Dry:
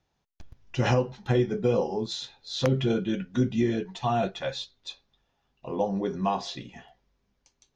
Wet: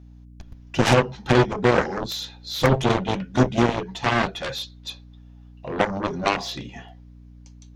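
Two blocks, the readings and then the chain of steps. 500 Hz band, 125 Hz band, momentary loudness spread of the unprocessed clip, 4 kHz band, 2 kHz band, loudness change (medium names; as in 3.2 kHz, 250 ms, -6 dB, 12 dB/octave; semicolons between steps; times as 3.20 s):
+4.5 dB, +4.5 dB, 13 LU, +6.5 dB, +12.5 dB, +5.5 dB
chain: hum 60 Hz, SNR 23 dB; Chebyshev shaper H 7 -10 dB, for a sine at -12.5 dBFS; trim +5 dB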